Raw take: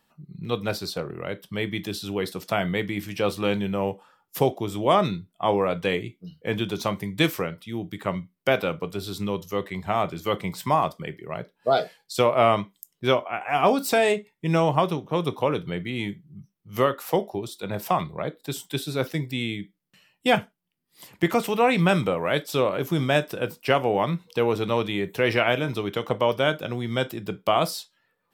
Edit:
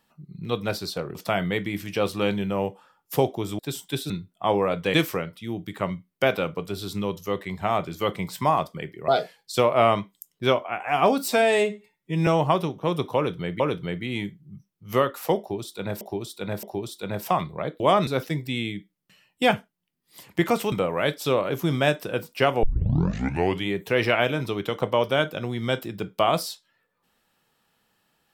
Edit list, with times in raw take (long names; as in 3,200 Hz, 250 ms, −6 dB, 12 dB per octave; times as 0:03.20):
0:01.15–0:02.38: remove
0:04.82–0:05.09: swap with 0:18.40–0:18.91
0:05.93–0:07.19: remove
0:11.33–0:11.69: remove
0:13.89–0:14.55: time-stretch 1.5×
0:15.44–0:15.88: repeat, 2 plays
0:17.23–0:17.85: repeat, 3 plays
0:21.56–0:22.00: remove
0:23.91: tape start 1.05 s